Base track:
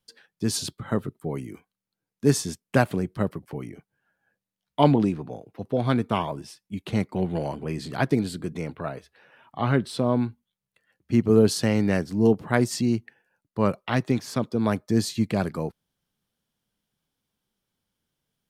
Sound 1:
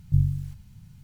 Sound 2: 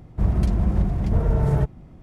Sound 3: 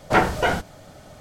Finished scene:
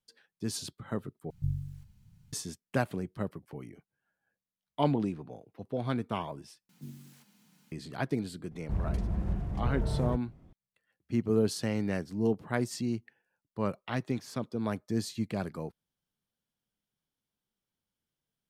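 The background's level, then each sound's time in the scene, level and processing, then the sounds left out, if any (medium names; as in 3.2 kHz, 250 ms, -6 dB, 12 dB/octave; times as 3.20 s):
base track -9 dB
1.30 s: replace with 1 -11 dB
6.69 s: replace with 1 -0.5 dB + steep high-pass 220 Hz
8.51 s: add 2 -11 dB
not used: 3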